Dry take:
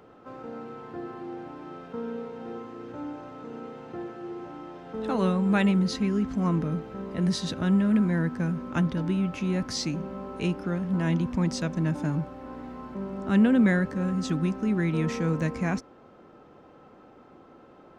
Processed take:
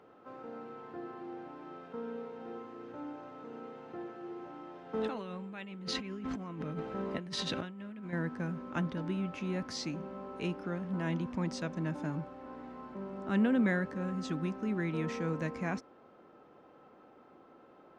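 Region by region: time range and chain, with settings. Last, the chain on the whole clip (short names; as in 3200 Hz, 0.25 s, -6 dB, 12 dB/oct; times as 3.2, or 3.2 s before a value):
4.93–8.13 dynamic EQ 2800 Hz, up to +7 dB, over -49 dBFS, Q 1.2 + negative-ratio compressor -32 dBFS
whole clip: LPF 3900 Hz 6 dB/oct; low shelf 150 Hz -11.5 dB; gain -4.5 dB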